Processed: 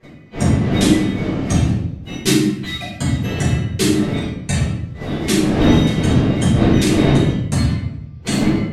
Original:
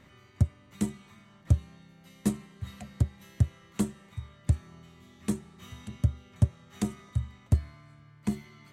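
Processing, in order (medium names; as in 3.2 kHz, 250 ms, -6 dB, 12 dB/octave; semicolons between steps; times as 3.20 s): coarse spectral quantiser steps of 30 dB; wind noise 210 Hz -33 dBFS; frequency weighting D; gate -42 dBFS, range -20 dB; simulated room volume 220 m³, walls mixed, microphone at 4.9 m; trim +3 dB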